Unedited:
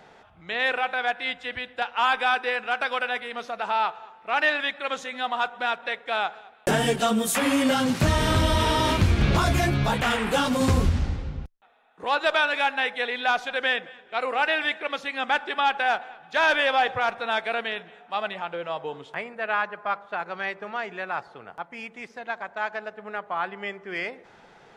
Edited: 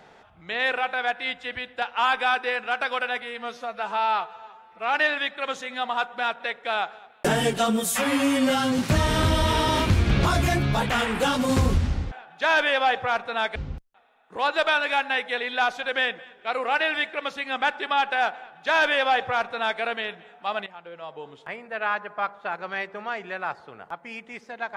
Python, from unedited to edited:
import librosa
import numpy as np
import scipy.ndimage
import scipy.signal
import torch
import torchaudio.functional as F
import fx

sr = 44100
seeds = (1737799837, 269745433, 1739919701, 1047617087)

y = fx.edit(x, sr, fx.stretch_span(start_s=3.22, length_s=1.15, factor=1.5),
    fx.stretch_span(start_s=7.28, length_s=0.62, factor=1.5),
    fx.duplicate(start_s=16.04, length_s=1.44, to_s=11.23),
    fx.fade_in_from(start_s=18.34, length_s=1.36, floor_db=-13.5), tone=tone)